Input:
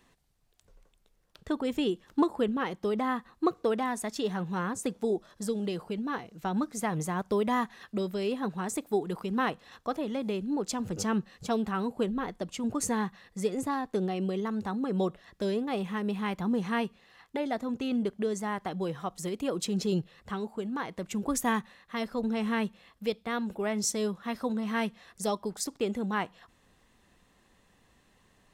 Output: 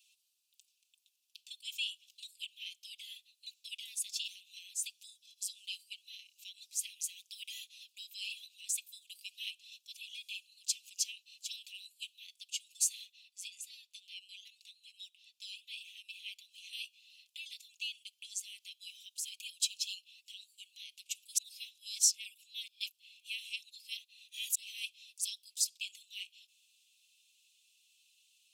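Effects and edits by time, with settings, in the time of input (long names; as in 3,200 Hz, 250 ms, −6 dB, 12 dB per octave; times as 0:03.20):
0:13.05–0:16.73: high-shelf EQ 4,300 Hz −6.5 dB
0:21.38–0:24.55: reverse
whole clip: Butterworth high-pass 2,500 Hz 96 dB per octave; comb filter 4.5 ms; level +2 dB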